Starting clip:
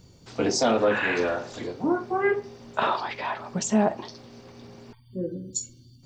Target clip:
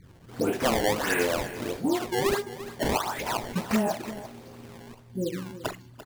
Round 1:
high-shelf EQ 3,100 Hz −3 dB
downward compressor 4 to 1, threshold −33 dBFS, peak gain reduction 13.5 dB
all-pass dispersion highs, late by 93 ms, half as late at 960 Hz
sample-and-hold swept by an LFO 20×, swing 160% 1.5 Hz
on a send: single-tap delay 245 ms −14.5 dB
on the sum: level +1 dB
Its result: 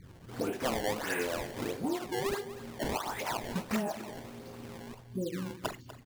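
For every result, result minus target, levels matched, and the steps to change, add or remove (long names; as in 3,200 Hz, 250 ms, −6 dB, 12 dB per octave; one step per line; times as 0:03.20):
downward compressor: peak gain reduction +8 dB; echo 98 ms early
change: downward compressor 4 to 1, threshold −22.5 dBFS, peak gain reduction 5.5 dB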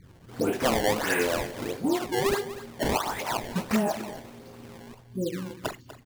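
echo 98 ms early
change: single-tap delay 343 ms −14.5 dB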